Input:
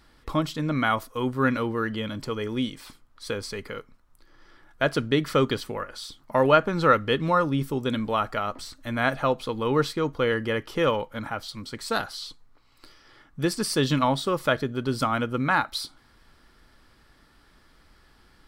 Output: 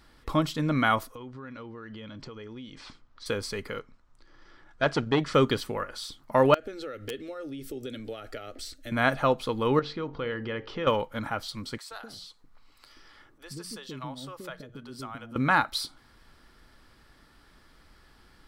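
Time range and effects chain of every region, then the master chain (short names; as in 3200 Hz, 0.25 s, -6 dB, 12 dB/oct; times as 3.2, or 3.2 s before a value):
1.15–3.26 LPF 6200 Hz 24 dB/oct + compressor 8:1, threshold -39 dBFS
3.79–5.34 LPF 7600 Hz 24 dB/oct + core saturation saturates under 810 Hz
6.54–8.92 compressor 16:1, threshold -29 dBFS + fixed phaser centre 410 Hz, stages 4 + wrapped overs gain 24 dB
9.79–10.87 LPF 4700 Hz 24 dB/oct + compressor 2:1, threshold -34 dBFS + de-hum 49.52 Hz, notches 20
11.78–15.36 notches 60/120/180 Hz + compressor 2:1, threshold -48 dBFS + bands offset in time highs, lows 0.13 s, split 470 Hz
whole clip: dry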